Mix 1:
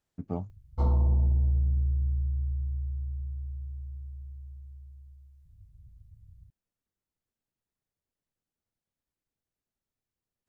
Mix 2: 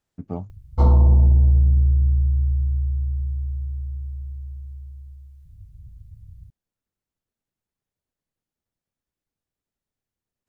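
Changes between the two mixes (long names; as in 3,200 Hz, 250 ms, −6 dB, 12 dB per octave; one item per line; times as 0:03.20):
speech +3.0 dB
background +10.0 dB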